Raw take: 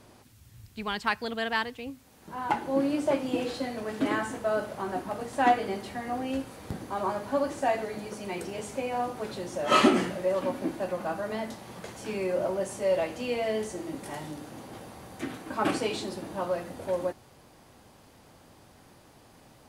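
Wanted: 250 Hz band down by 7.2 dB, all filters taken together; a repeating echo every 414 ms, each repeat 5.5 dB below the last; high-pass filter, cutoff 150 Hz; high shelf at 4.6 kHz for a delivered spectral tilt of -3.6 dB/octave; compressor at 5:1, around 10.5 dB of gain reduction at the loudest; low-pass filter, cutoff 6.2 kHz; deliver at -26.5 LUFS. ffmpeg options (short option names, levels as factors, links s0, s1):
-af "highpass=150,lowpass=6200,equalizer=f=250:t=o:g=-8.5,highshelf=f=4600:g=3.5,acompressor=threshold=0.0316:ratio=5,aecho=1:1:414|828|1242|1656|2070|2484|2898:0.531|0.281|0.149|0.079|0.0419|0.0222|0.0118,volume=2.66"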